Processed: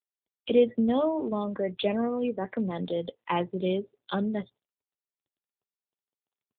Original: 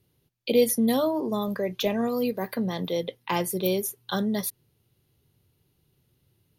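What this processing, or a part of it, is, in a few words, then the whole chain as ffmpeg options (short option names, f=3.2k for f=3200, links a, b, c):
mobile call with aggressive noise cancelling: -filter_complex "[0:a]asplit=3[a][b][c];[a]afade=t=out:st=2.91:d=0.02[d];[b]adynamicequalizer=threshold=0.0158:dfrequency=480:dqfactor=1.3:tfrequency=480:tqfactor=1.3:attack=5:release=100:ratio=0.375:range=1.5:mode=cutabove:tftype=bell,afade=t=in:st=2.91:d=0.02,afade=t=out:st=3.85:d=0.02[e];[c]afade=t=in:st=3.85:d=0.02[f];[d][e][f]amix=inputs=3:normalize=0,highpass=f=110:p=1,afftdn=nr=34:nf=-39" -ar 8000 -c:a libopencore_amrnb -b:a 7950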